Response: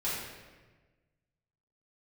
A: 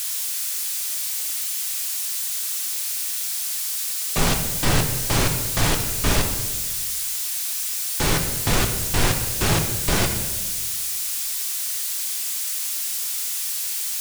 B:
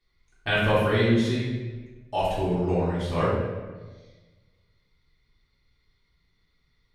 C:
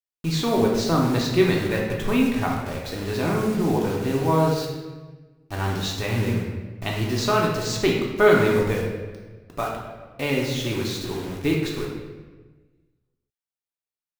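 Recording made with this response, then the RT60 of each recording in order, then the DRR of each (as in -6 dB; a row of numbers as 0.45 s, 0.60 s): B; 1.3 s, 1.3 s, 1.3 s; 4.0 dB, -10.5 dB, -2.5 dB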